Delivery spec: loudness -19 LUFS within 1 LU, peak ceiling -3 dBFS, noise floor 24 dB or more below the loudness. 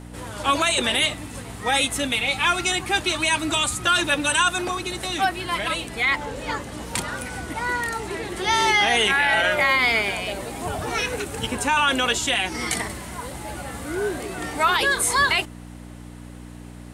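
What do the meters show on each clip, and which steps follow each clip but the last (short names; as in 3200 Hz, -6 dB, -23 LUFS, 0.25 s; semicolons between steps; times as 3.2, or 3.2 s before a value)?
ticks 32/s; hum 60 Hz; harmonics up to 300 Hz; hum level -38 dBFS; loudness -21.5 LUFS; peak -7.0 dBFS; loudness target -19.0 LUFS
-> de-click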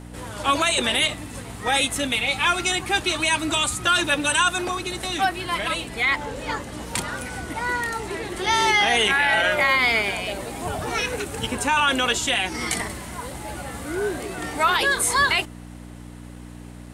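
ticks 0.18/s; hum 60 Hz; harmonics up to 300 Hz; hum level -38 dBFS
-> de-hum 60 Hz, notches 5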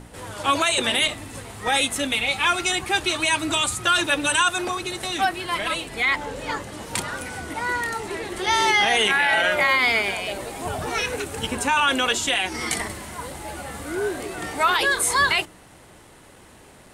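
hum none; loudness -22.0 LUFS; peak -7.0 dBFS; loudness target -19.0 LUFS
-> gain +3 dB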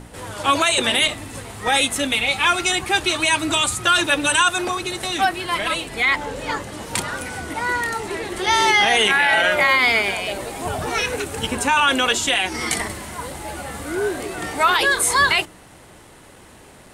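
loudness -19.0 LUFS; peak -4.0 dBFS; noise floor -46 dBFS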